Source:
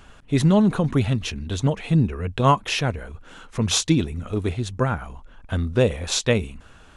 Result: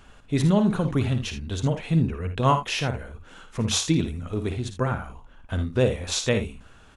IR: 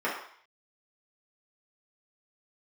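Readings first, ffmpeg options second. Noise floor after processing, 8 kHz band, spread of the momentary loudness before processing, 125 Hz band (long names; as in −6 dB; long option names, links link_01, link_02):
−51 dBFS, −3.0 dB, 11 LU, −2.5 dB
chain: -af "aecho=1:1:55|78:0.355|0.211,volume=-3.5dB"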